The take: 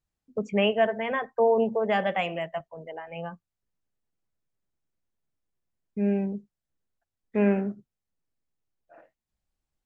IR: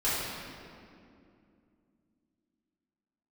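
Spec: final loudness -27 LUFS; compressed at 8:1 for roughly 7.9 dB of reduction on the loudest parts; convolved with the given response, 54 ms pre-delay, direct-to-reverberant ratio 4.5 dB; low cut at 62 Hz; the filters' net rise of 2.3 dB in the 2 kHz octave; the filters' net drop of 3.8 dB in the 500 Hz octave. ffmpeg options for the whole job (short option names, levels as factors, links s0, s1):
-filter_complex "[0:a]highpass=62,equalizer=f=500:t=o:g=-5,equalizer=f=2000:t=o:g=3,acompressor=threshold=0.0447:ratio=8,asplit=2[s0][s1];[1:a]atrim=start_sample=2205,adelay=54[s2];[s1][s2]afir=irnorm=-1:irlink=0,volume=0.168[s3];[s0][s3]amix=inputs=2:normalize=0,volume=1.88"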